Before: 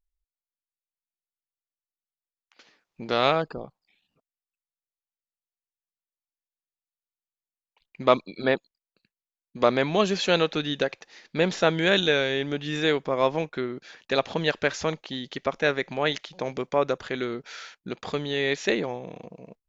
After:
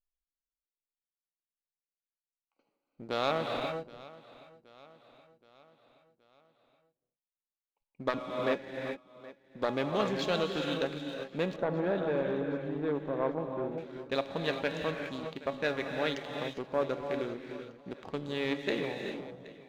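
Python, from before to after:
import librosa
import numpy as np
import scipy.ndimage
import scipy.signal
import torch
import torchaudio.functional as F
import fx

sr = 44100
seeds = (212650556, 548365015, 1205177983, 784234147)

y = fx.wiener(x, sr, points=25)
y = fx.comb_fb(y, sr, f0_hz=280.0, decay_s=0.27, harmonics='all', damping=0.0, mix_pct=60)
y = fx.rev_gated(y, sr, seeds[0], gate_ms=430, shape='rising', drr_db=4.5)
y = fx.leveller(y, sr, passes=1)
y = fx.lowpass(y, sr, hz=1100.0, slope=12, at=(11.56, 13.78))
y = fx.echo_feedback(y, sr, ms=773, feedback_pct=54, wet_db=-20.5)
y = fx.transformer_sat(y, sr, knee_hz=870.0)
y = F.gain(torch.from_numpy(y), -3.5).numpy()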